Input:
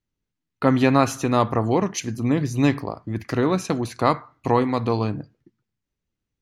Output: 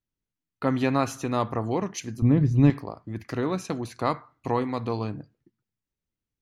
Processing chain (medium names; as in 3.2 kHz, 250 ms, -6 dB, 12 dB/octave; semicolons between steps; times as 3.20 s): 2.22–2.70 s: RIAA curve playback; trim -6.5 dB